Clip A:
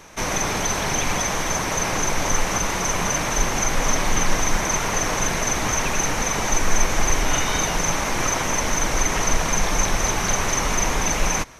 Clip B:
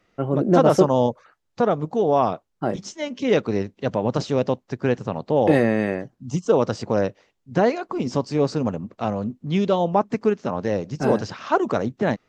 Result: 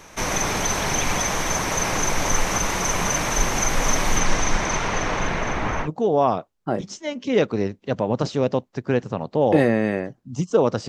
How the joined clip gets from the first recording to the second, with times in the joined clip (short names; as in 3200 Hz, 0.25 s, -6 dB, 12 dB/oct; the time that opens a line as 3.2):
clip A
4.19–5.89 LPF 8300 Hz -> 1800 Hz
5.85 switch to clip B from 1.8 s, crossfade 0.08 s